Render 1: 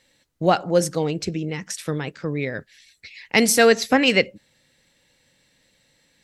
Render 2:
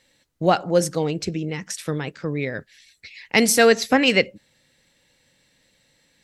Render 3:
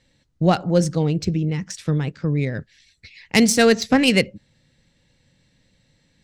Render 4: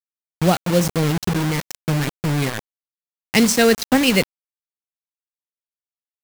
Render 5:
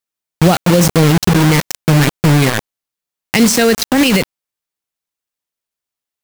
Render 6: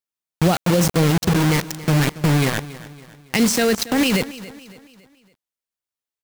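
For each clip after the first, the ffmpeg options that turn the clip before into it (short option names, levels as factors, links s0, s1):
-af anull
-af "adynamicsmooth=sensitivity=0.5:basefreq=3300,bass=f=250:g=12,treble=f=4000:g=14,volume=0.794"
-af "acrusher=bits=3:mix=0:aa=0.000001"
-af "alimiter=level_in=3.76:limit=0.891:release=50:level=0:latency=1,volume=0.891"
-af "aecho=1:1:279|558|837|1116:0.141|0.0622|0.0273|0.012,volume=0.473"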